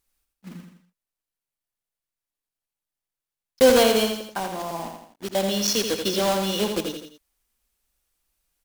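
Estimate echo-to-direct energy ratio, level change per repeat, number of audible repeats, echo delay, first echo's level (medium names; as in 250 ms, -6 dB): -5.0 dB, -6.5 dB, 3, 83 ms, -6.0 dB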